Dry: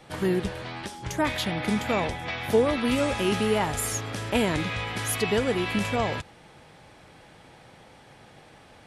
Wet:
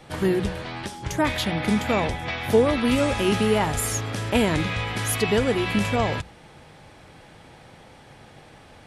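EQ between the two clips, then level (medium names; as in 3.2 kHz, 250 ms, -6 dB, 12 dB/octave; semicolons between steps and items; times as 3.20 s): bass shelf 140 Hz +5.5 dB; hum notches 60/120/180 Hz; +2.5 dB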